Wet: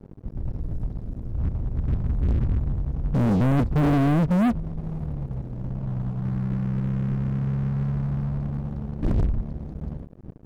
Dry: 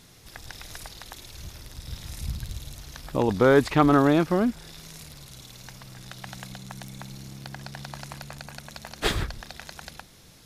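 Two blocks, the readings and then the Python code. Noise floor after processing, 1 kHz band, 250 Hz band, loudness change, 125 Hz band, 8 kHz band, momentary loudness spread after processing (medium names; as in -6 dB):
-42 dBFS, -5.0 dB, +2.5 dB, -2.5 dB, +10.0 dB, under -15 dB, 14 LU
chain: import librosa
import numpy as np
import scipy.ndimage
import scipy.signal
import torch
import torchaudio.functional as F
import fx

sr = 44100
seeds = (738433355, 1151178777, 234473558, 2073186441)

y = scipy.signal.sosfilt(scipy.signal.cheby2(4, 50, 640.0, 'lowpass', fs=sr, output='sos'), x)
y = fx.leveller(y, sr, passes=5)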